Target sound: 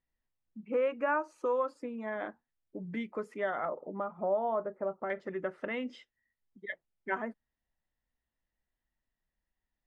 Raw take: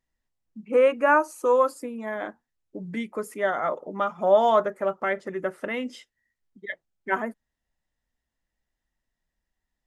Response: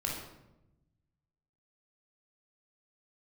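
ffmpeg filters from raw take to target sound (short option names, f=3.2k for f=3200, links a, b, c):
-af "acompressor=threshold=-26dB:ratio=2,asetnsamples=n=441:p=0,asendcmd='3.65 lowpass f 1000;5.1 lowpass f 3700',lowpass=3.6k,volume=-5dB"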